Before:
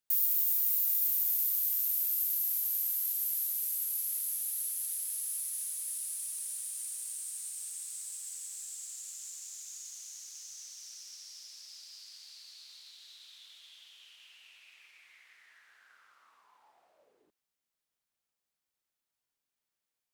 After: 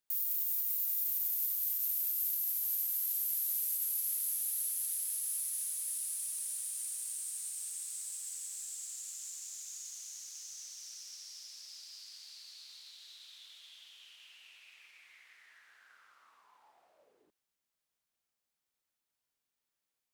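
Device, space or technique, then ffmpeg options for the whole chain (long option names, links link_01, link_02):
stacked limiters: -af "alimiter=limit=-20dB:level=0:latency=1:release=268,alimiter=limit=-24dB:level=0:latency=1:release=55"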